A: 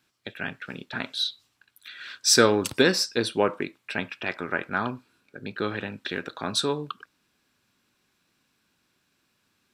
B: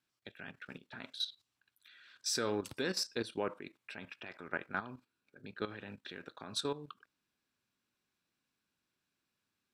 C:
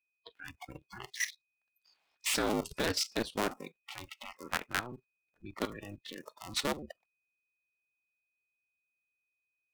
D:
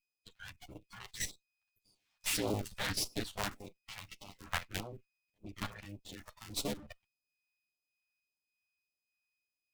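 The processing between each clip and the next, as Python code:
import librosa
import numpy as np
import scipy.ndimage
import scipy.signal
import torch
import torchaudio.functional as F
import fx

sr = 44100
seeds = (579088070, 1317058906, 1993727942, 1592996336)

y1 = fx.level_steps(x, sr, step_db=13)
y1 = F.gain(torch.from_numpy(y1), -8.0).numpy()
y2 = fx.cycle_switch(y1, sr, every=2, mode='inverted')
y2 = y2 + 10.0 ** (-64.0 / 20.0) * np.sin(2.0 * np.pi * 2500.0 * np.arange(len(y2)) / sr)
y2 = fx.noise_reduce_blind(y2, sr, reduce_db=22)
y2 = F.gain(torch.from_numpy(y2), 3.5).numpy()
y3 = fx.lower_of_two(y2, sr, delay_ms=9.9)
y3 = fx.phaser_stages(y3, sr, stages=2, low_hz=290.0, high_hz=1800.0, hz=1.7, feedback_pct=0)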